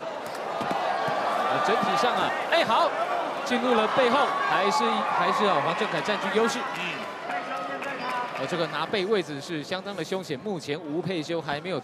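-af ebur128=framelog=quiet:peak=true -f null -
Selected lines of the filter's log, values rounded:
Integrated loudness:
  I:         -26.0 LUFS
  Threshold: -36.0 LUFS
Loudness range:
  LRA:         5.9 LU
  Threshold: -45.6 LUFS
  LRA low:   -29.4 LUFS
  LRA high:  -23.5 LUFS
True peak:
  Peak:      -10.4 dBFS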